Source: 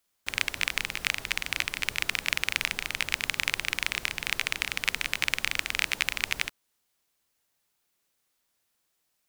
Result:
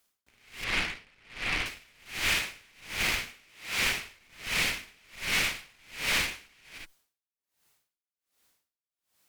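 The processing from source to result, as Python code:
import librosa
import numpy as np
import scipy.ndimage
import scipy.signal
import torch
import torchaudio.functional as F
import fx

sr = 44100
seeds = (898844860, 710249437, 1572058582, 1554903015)

p1 = fx.schmitt(x, sr, flips_db=-17.5)
p2 = x + F.gain(torch.from_numpy(p1), -6.0).numpy()
p3 = fx.highpass(p2, sr, hz=fx.line((3.19, 120.0), (3.8, 460.0)), slope=24, at=(3.19, 3.8), fade=0.02)
p4 = fx.rev_gated(p3, sr, seeds[0], gate_ms=380, shape='flat', drr_db=-1.5)
p5 = np.clip(10.0 ** (20.0 / 20.0) * p4, -1.0, 1.0) / 10.0 ** (20.0 / 20.0)
p6 = fx.moving_average(p5, sr, points=7, at=(0.64, 1.66))
p7 = fx.tube_stage(p6, sr, drive_db=29.0, bias=0.7)
p8 = p7 * 10.0 ** (-35 * (0.5 - 0.5 * np.cos(2.0 * np.pi * 1.3 * np.arange(len(p7)) / sr)) / 20.0)
y = F.gain(torch.from_numpy(p8), 8.0).numpy()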